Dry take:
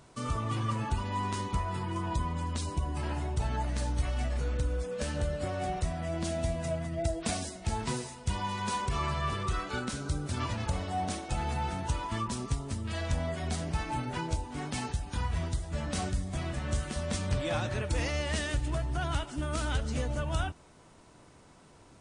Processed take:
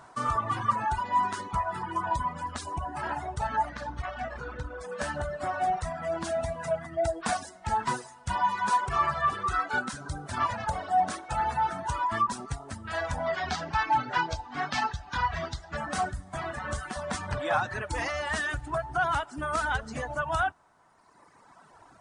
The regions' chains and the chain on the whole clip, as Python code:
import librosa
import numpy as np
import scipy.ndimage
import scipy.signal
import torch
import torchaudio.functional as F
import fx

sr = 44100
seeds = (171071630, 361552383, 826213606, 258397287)

y = fx.chain(x, sr, fx.law_mismatch(coded='A'),
    fx.lowpass(hz=4600.0, slope=12), at=(3.69, 4.81))
y = fx.chain(y, sr, fx.lowpass(hz=5300.0, slope=24),
    fx.high_shelf(hz=2100.0, db=10.0), at=(13.26, 15.77))
y = fx.low_shelf(y, sr, hz=80.0, db=-7.0)
y = fx.dereverb_blind(y, sr, rt60_s=1.9)
y = fx.band_shelf(y, sr, hz=1100.0, db=11.5, octaves=1.7)